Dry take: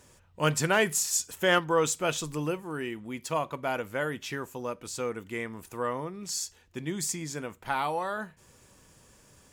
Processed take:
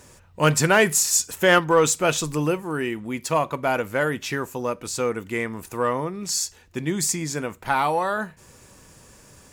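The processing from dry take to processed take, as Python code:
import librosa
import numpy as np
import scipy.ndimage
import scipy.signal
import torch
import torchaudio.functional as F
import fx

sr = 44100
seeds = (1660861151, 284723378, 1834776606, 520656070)

p1 = fx.peak_eq(x, sr, hz=3200.0, db=-4.0, octaves=0.21)
p2 = np.clip(p1, -10.0 ** (-25.0 / 20.0), 10.0 ** (-25.0 / 20.0))
p3 = p1 + (p2 * librosa.db_to_amplitude(-11.0))
y = p3 * librosa.db_to_amplitude(6.0)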